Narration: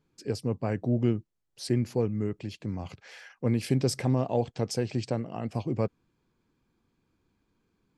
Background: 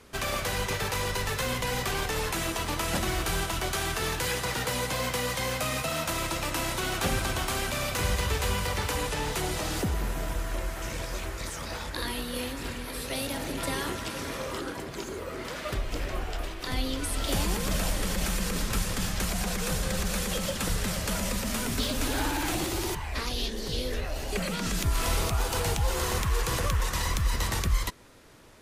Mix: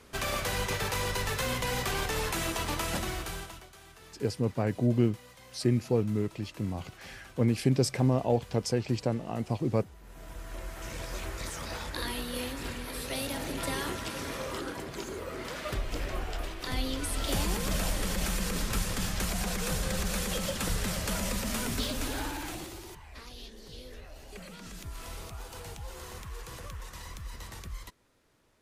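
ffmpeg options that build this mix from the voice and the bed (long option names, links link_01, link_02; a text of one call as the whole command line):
ffmpeg -i stem1.wav -i stem2.wav -filter_complex "[0:a]adelay=3950,volume=0.5dB[link_01];[1:a]volume=19.5dB,afade=type=out:start_time=2.72:duration=0.95:silence=0.0841395,afade=type=in:start_time=10.02:duration=1.33:silence=0.0891251,afade=type=out:start_time=21.65:duration=1.18:silence=0.223872[link_02];[link_01][link_02]amix=inputs=2:normalize=0" out.wav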